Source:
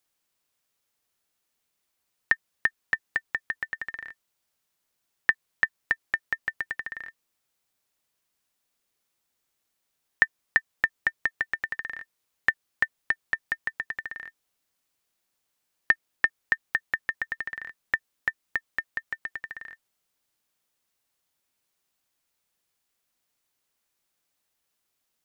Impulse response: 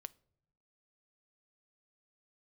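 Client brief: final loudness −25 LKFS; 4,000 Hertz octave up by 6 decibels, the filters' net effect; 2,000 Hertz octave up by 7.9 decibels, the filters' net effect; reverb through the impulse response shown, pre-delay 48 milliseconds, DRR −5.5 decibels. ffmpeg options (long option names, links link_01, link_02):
-filter_complex "[0:a]equalizer=frequency=2000:width_type=o:gain=8,equalizer=frequency=4000:width_type=o:gain=4.5,asplit=2[link_01][link_02];[1:a]atrim=start_sample=2205,adelay=48[link_03];[link_02][link_03]afir=irnorm=-1:irlink=0,volume=11dB[link_04];[link_01][link_04]amix=inputs=2:normalize=0,volume=-10dB"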